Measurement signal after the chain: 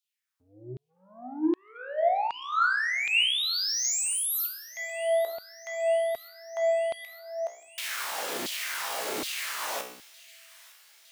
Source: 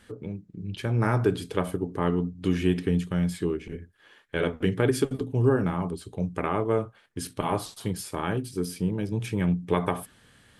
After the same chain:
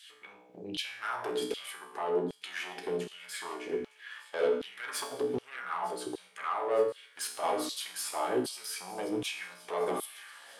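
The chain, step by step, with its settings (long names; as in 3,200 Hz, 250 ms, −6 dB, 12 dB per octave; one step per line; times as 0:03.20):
hum removal 149.7 Hz, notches 11
in parallel at +1 dB: downward compressor, threshold −34 dBFS
on the sum: brickwall limiter −16 dBFS
soft clipping −24 dBFS
tuned comb filter 62 Hz, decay 0.7 s, harmonics all, mix 80%
auto-filter high-pass saw down 1.3 Hz 280–3,700 Hz
on a send: delay with a high-pass on its return 910 ms, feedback 68%, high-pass 2,000 Hz, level −19 dB
on the sum: level +7 dB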